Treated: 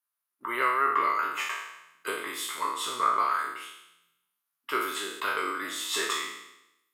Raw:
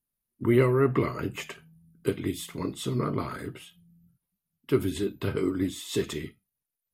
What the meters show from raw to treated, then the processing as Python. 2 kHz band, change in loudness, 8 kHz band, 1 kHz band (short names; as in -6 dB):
+8.5 dB, 0.0 dB, +6.0 dB, +11.5 dB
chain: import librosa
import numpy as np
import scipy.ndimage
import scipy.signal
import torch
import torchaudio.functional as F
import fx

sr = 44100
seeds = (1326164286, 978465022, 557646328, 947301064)

y = fx.spec_trails(x, sr, decay_s=0.86)
y = scipy.signal.sosfilt(scipy.signal.butter(2, 890.0, 'highpass', fs=sr, output='sos'), y)
y = fx.peak_eq(y, sr, hz=1200.0, db=11.0, octaves=1.1)
y = fx.rider(y, sr, range_db=3, speed_s=2.0)